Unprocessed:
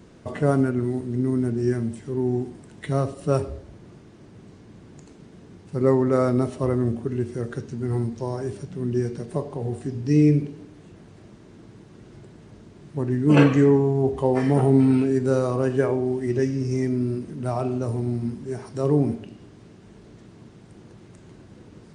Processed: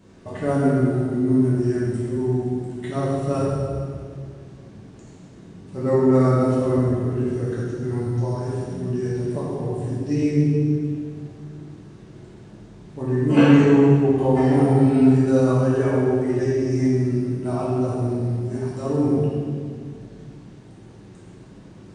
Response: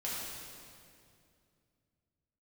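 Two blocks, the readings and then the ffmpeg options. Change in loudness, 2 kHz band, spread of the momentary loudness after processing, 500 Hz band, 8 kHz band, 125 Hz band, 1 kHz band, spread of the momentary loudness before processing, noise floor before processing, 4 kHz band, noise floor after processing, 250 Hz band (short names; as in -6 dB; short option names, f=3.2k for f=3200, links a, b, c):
+2.5 dB, +2.0 dB, 16 LU, +2.0 dB, n/a, +3.0 dB, +2.5 dB, 13 LU, -49 dBFS, +2.5 dB, -44 dBFS, +3.5 dB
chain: -filter_complex "[1:a]atrim=start_sample=2205,asetrate=52920,aresample=44100[a];[0:a][a]afir=irnorm=-1:irlink=0"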